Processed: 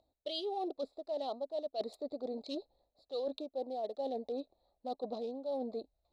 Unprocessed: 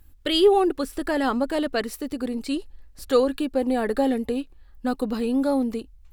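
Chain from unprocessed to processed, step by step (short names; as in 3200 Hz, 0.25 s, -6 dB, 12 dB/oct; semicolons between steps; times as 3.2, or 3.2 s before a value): Wiener smoothing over 15 samples; double band-pass 1600 Hz, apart 2.6 oct; reverse; compressor 10:1, threshold -45 dBFS, peak gain reduction 18.5 dB; reverse; gain +10 dB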